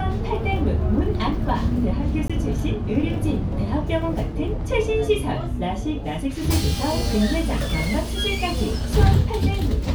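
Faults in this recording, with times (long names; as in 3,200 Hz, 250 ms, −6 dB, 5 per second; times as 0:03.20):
0:02.28–0:02.30: drop-out 16 ms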